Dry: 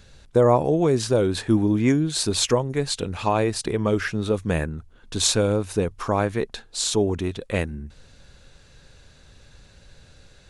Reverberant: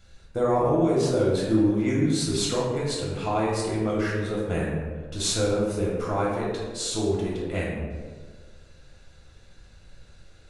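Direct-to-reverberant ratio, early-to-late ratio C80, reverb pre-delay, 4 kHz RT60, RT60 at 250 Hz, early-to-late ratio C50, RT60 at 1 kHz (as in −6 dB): −5.0 dB, 3.0 dB, 3 ms, 0.75 s, 1.6 s, 1.0 dB, 1.3 s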